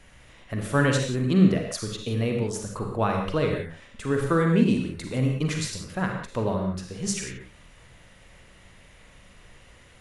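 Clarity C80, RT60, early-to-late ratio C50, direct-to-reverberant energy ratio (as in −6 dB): 5.5 dB, non-exponential decay, 3.5 dB, 1.5 dB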